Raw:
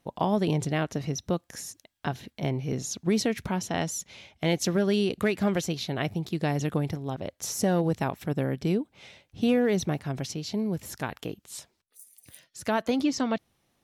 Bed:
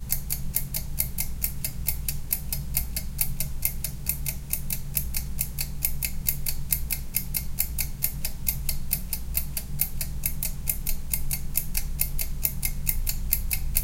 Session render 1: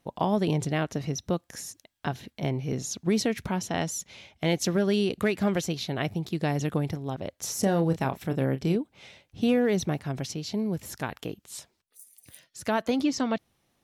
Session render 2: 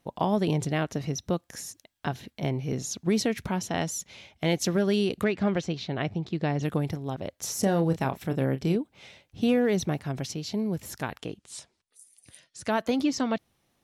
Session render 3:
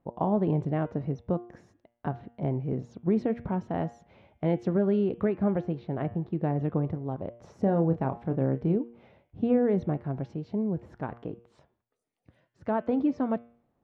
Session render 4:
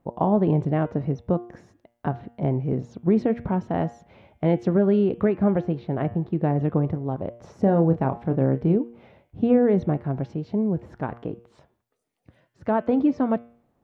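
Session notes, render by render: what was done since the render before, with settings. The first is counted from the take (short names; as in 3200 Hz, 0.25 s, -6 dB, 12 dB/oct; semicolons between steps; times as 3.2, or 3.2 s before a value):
7.6–8.76 doubler 30 ms -10 dB
5.24–6.63 air absorption 120 m; 11.18–12.7 Chebyshev low-pass 10000 Hz, order 4
LPF 1000 Hz 12 dB/oct; de-hum 117.9 Hz, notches 30
gain +5.5 dB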